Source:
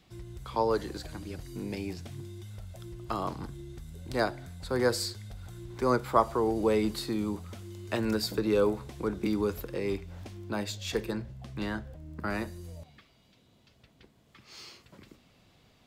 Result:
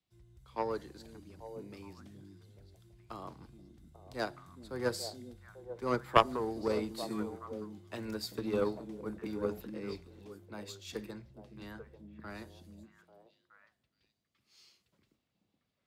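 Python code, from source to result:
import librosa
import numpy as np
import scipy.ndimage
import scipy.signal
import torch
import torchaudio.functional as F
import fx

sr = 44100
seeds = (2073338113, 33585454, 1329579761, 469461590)

y = scipy.signal.sosfilt(scipy.signal.butter(2, 50.0, 'highpass', fs=sr, output='sos'), x)
y = fx.echo_stepped(y, sr, ms=421, hz=220.0, octaves=1.4, feedback_pct=70, wet_db=-1.5)
y = fx.cheby_harmonics(y, sr, harmonics=(3, 5), levels_db=(-11, -33), full_scale_db=-9.5)
y = fx.band_widen(y, sr, depth_pct=40)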